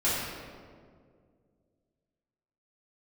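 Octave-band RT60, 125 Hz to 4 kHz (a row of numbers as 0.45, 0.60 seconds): 2.7, 2.6, 2.4, 1.7, 1.3, 1.1 seconds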